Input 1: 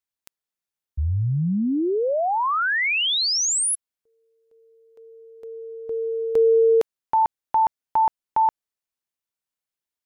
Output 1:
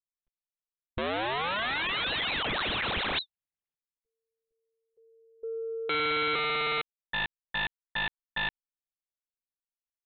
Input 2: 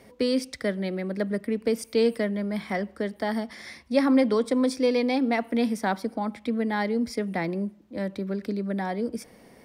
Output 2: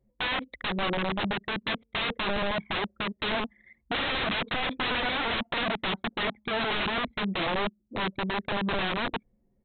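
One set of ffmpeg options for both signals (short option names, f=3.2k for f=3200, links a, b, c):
-af "anlmdn=15.8,aresample=8000,aeval=exprs='(mod(21.1*val(0)+1,2)-1)/21.1':c=same,aresample=44100,volume=2.5dB"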